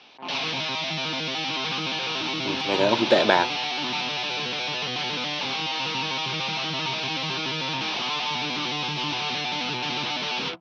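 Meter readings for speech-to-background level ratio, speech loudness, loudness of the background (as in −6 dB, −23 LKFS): 4.0 dB, −22.5 LKFS, −26.5 LKFS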